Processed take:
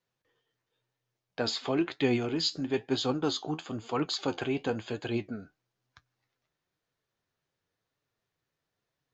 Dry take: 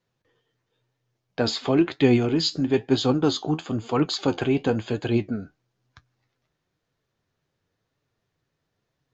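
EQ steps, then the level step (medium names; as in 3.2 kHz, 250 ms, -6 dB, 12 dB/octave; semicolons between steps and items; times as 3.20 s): bass shelf 400 Hz -7 dB; -4.5 dB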